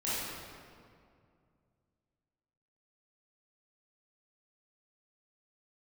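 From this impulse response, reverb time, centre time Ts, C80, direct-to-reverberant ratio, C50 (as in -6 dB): 2.3 s, 0.148 s, -1.5 dB, -11.0 dB, -4.5 dB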